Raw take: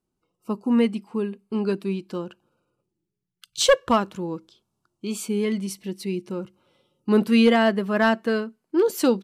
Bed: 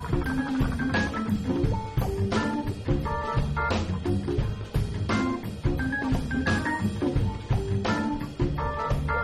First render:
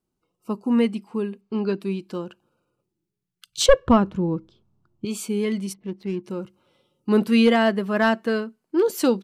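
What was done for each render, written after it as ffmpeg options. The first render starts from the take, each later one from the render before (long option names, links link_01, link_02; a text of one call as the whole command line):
ffmpeg -i in.wav -filter_complex "[0:a]asettb=1/sr,asplit=3[link_01][link_02][link_03];[link_01]atrim=end=1.414[link_04];[link_02]atrim=start=1.41:end=1.81,asetpts=PTS-STARTPTS,afade=type=in:duration=0.004:curve=qsin,afade=type=out:start_time=0.396:duration=0.004:curve=qsin,lowpass=frequency=6100:width=0.5412,lowpass=frequency=6100:width=1.3066[link_05];[link_03]atrim=start=1.806[link_06];[link_04][link_05]acrossfade=duration=0.004:curve1=hsin:curve2=qsin[link_07];[link_07][link_06]acrossfade=duration=0.004:curve1=qsin:curve2=hsin,asettb=1/sr,asplit=3[link_08][link_09][link_10];[link_08]atrim=end=3.664[link_11];[link_09]atrim=start=3.66:end=5.05,asetpts=PTS-STARTPTS,afade=type=in:duration=0.004:curve=qsin,afade=type=out:start_time=1.386:duration=0.004:curve=qsin,aemphasis=mode=reproduction:type=riaa[link_12];[link_10]atrim=start=5.046[link_13];[link_11][link_12]acrossfade=duration=0.004:curve1=hsin:curve2=qsin[link_14];[link_14][link_13]acrossfade=duration=0.004:curve1=qsin:curve2=hsin,asplit=3[link_15][link_16][link_17];[link_15]afade=type=out:start_time=5.72:duration=0.02[link_18];[link_16]adynamicsmooth=sensitivity=5:basefreq=910,afade=type=in:start_time=5.72:duration=0.02,afade=type=out:start_time=6.23:duration=0.02[link_19];[link_17]afade=type=in:start_time=6.23:duration=0.02[link_20];[link_18][link_19][link_20]amix=inputs=3:normalize=0" out.wav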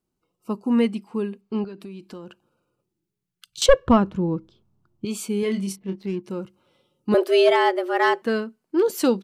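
ffmpeg -i in.wav -filter_complex "[0:a]asettb=1/sr,asplit=3[link_01][link_02][link_03];[link_01]atrim=end=1.644[link_04];[link_02]atrim=start=1.64:end=3.62,asetpts=PTS-STARTPTS,afade=type=in:duration=0.004:curve=qsin,afade=type=out:start_time=1.976:duration=0.004:curve=qsin,acompressor=threshold=-33dB:ratio=16:attack=3.2:release=140:knee=1:detection=peak[link_05];[link_03]atrim=start=3.616[link_06];[link_04][link_05]acrossfade=duration=0.004:curve1=hsin:curve2=qsin[link_07];[link_07][link_06]acrossfade=duration=0.004:curve1=qsin:curve2=hsin,asettb=1/sr,asplit=3[link_08][link_09][link_10];[link_08]atrim=end=5.404[link_11];[link_09]atrim=start=5.4:end=6.06,asetpts=PTS-STARTPTS,afade=type=in:duration=0.004:curve=qsin,afade=type=out:start_time=0.656:duration=0.004:curve=qsin,asplit=2[link_12][link_13];[link_13]adelay=26,volume=-6.5dB[link_14];[link_12][link_14]amix=inputs=2:normalize=0,atrim=end_sample=29106[link_15];[link_10]atrim=start=6.056[link_16];[link_11][link_15]acrossfade=duration=0.004:curve1=hsin:curve2=qsin[link_17];[link_17][link_16]acrossfade=duration=0.004:curve1=qsin:curve2=hsin,asettb=1/sr,asplit=3[link_18][link_19][link_20];[link_18]atrim=end=7.144[link_21];[link_19]atrim=start=7.14:end=8.22,asetpts=PTS-STARTPTS,afade=type=in:duration=0.004:curve=qsin,afade=type=out:start_time=1.076:duration=0.004:curve=qsin,afreqshift=170[link_22];[link_20]atrim=start=8.216[link_23];[link_21][link_22]acrossfade=duration=0.004:curve1=hsin:curve2=qsin[link_24];[link_24][link_23]acrossfade=duration=0.004:curve1=qsin:curve2=hsin" out.wav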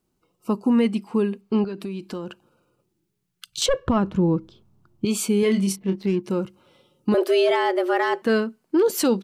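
ffmpeg -i in.wav -filter_complex "[0:a]asplit=2[link_01][link_02];[link_02]acompressor=threshold=-26dB:ratio=6,volume=1.5dB[link_03];[link_01][link_03]amix=inputs=2:normalize=0,alimiter=limit=-12dB:level=0:latency=1:release=16" out.wav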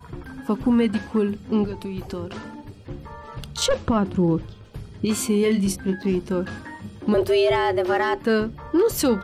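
ffmpeg -i in.wav -i bed.wav -filter_complex "[1:a]volume=-10dB[link_01];[0:a][link_01]amix=inputs=2:normalize=0" out.wav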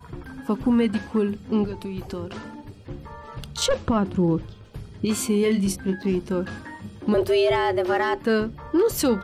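ffmpeg -i in.wav -af "volume=-1dB" out.wav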